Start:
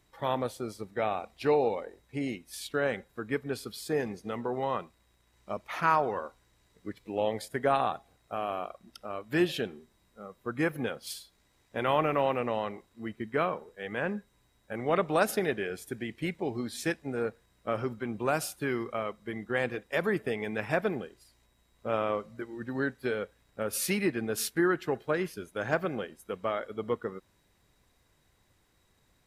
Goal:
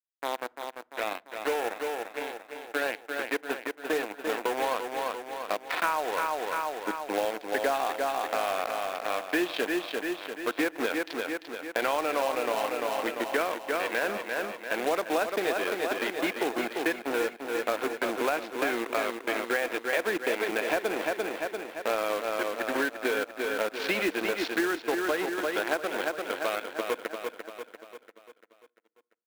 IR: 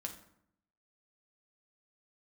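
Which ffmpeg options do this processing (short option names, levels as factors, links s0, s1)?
-filter_complex "[0:a]adynamicequalizer=threshold=0.00355:dfrequency=1800:dqfactor=3.4:tfrequency=1800:tqfactor=3.4:attack=5:release=100:ratio=0.375:range=2.5:mode=cutabove:tftype=bell,dynaudnorm=f=420:g=17:m=3.16,aresample=16000,acrusher=bits=3:mix=0:aa=0.5,aresample=44100,highpass=f=340:w=0.5412,highpass=f=340:w=1.3066,equalizer=f=400:t=q:w=4:g=-8,equalizer=f=570:t=q:w=4:g=-5,equalizer=f=840:t=q:w=4:g=-4,equalizer=f=1200:t=q:w=4:g=-8,equalizer=f=2000:t=q:w=4:g=-4,equalizer=f=3000:t=q:w=4:g=-5,lowpass=f=3500:w=0.5412,lowpass=f=3500:w=1.3066,acrusher=bits=3:mode=log:mix=0:aa=0.000001,aecho=1:1:344|688|1032|1376|1720|2064:0.422|0.215|0.11|0.0559|0.0285|0.0145,acompressor=threshold=0.0355:ratio=6,asplit=2[s0][s1];[1:a]atrim=start_sample=2205,highshelf=f=4900:g=-10[s2];[s1][s2]afir=irnorm=-1:irlink=0,volume=0.133[s3];[s0][s3]amix=inputs=2:normalize=0,volume=1.58"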